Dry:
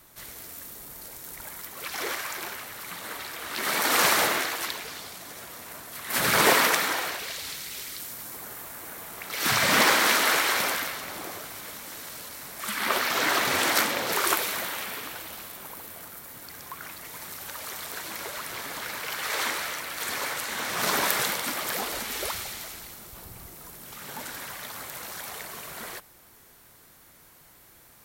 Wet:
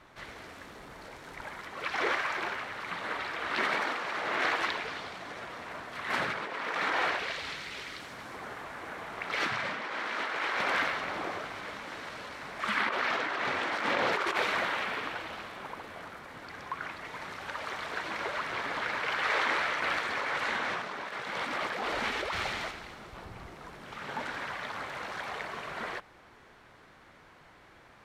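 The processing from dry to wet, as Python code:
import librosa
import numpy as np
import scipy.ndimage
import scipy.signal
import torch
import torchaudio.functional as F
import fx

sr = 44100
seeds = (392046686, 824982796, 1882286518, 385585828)

y = fx.over_compress(x, sr, threshold_db=-35.0, ratio=-1.0, at=(19.82, 22.71))
y = scipy.signal.sosfilt(scipy.signal.butter(2, 2500.0, 'lowpass', fs=sr, output='sos'), y)
y = fx.low_shelf(y, sr, hz=330.0, db=-5.5)
y = fx.over_compress(y, sr, threshold_db=-32.0, ratio=-1.0)
y = F.gain(torch.from_numpy(y), 1.5).numpy()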